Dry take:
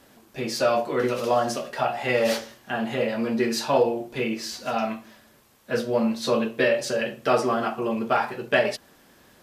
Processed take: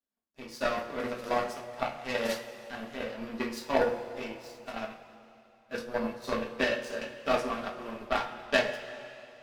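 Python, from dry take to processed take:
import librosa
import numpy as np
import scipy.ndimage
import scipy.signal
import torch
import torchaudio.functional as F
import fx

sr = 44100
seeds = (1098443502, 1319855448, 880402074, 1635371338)

y = fx.power_curve(x, sr, exponent=2.0)
y = fx.rev_double_slope(y, sr, seeds[0], early_s=0.22, late_s=2.8, knee_db=-18, drr_db=1.0)
y = y * 10.0 ** (-2.0 / 20.0)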